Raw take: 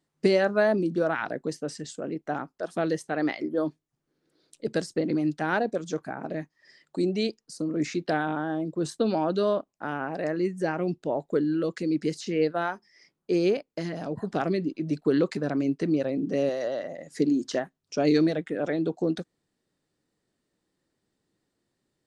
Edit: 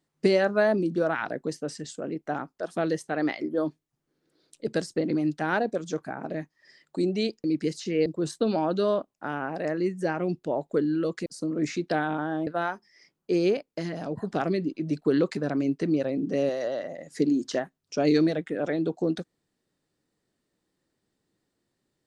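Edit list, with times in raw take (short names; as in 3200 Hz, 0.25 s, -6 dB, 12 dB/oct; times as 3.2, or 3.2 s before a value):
7.44–8.65 swap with 11.85–12.47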